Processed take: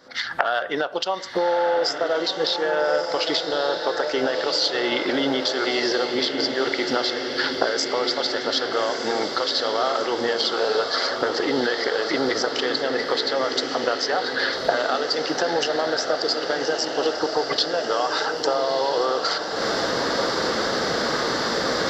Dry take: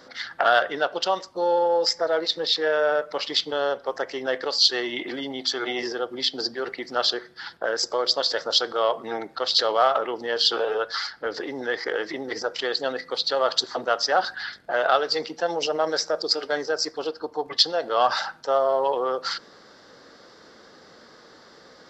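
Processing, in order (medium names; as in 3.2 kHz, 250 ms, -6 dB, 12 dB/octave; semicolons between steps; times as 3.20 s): recorder AGC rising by 73 dB/s; on a send: echo that smears into a reverb 1274 ms, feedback 67%, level -6 dB; on the sum: trim -5 dB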